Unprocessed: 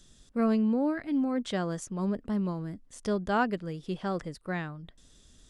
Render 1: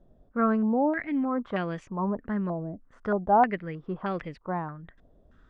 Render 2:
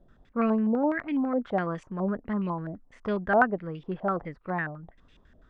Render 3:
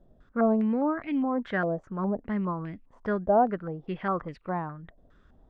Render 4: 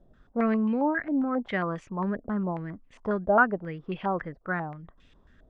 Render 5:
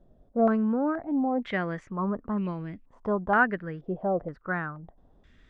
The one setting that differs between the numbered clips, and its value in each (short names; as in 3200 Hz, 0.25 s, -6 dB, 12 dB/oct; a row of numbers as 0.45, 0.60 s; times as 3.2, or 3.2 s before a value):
stepped low-pass, rate: 3.2, 12, 4.9, 7.4, 2.1 Hz